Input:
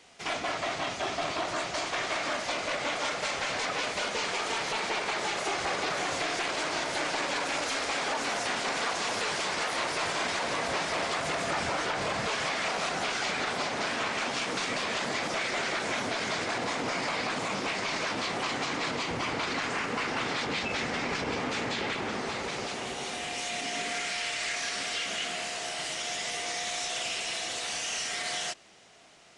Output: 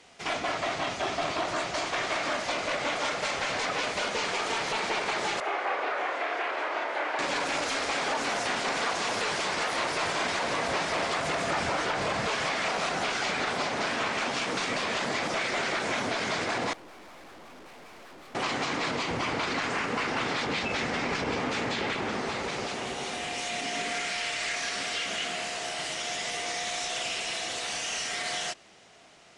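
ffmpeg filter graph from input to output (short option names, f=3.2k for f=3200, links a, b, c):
-filter_complex "[0:a]asettb=1/sr,asplit=3[a][b][c];[a]atrim=end=5.404[d];[b]atrim=start=5.4:end=7.19,asetpts=PTS-STARTPTS,afade=t=in:d=0.004:c=qsin,afade=t=out:st=1.786:d=0.004:c=qsin,highpass=f=240:w=0.5412,highpass=f=240:w=1.3066,acrossover=split=390 2700:gain=0.2 1 0.0891[e][f][g];[e][f][g]amix=inputs=3:normalize=0,asplit=2[h][i];[i]adelay=30,volume=-6dB[j];[h][j]amix=inputs=2:normalize=0,atrim=end_sample=78939[k];[c]atrim=start=7.186[l];[d][k]acrossfade=d=0.004:c1=hsin:c2=qsin[m];[m][l]acrossfade=d=0.004:c1=qsin:c2=hsin,asettb=1/sr,asplit=3[n][o][p];[n]atrim=end=16.734[q];[o]atrim=start=16.73:end=18.35,asetpts=PTS-STARTPTS,afade=t=in:d=0.004:c=qsin,afade=t=out:st=1.616:d=0.004:c=qsin,lowpass=f=1.2k:p=1,afreqshift=58,aeval=exprs='(tanh(316*val(0)+0.5)-tanh(0.5))/316':c=same[r];[p]atrim=start=18.346[s];[q][r]acrossfade=d=0.004:c1=hsin:c2=qsin[t];[t][s]acrossfade=d=0.004:c1=qsin:c2=hsin,lowpass=f=2.5k:p=1,aemphasis=mode=production:type=cd,volume=2.5dB"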